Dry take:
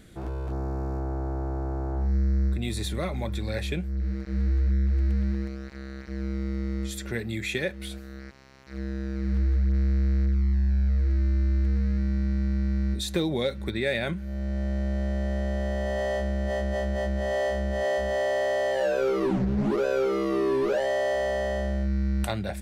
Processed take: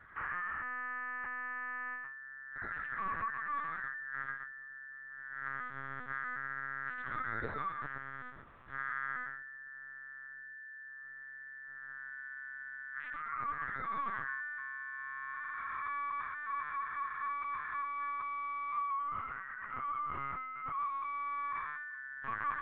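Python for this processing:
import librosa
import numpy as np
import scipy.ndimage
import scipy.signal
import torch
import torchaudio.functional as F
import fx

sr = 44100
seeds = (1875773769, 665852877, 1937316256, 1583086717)

y = fx.over_compress(x, sr, threshold_db=-32.0, ratio=-1.0)
y = y * np.sin(2.0 * np.pi * 1700.0 * np.arange(len(y)) / sr)
y = fx.double_bandpass(y, sr, hz=700.0, octaves=1.4)
y = fx.air_absorb(y, sr, metres=140.0)
y = y + 10.0 ** (-6.0 / 20.0) * np.pad(y, (int(124 * sr / 1000.0), 0))[:len(y)]
y = fx.lpc_vocoder(y, sr, seeds[0], excitation='pitch_kept', order=10)
y = y * 10.0 ** (5.5 / 20.0)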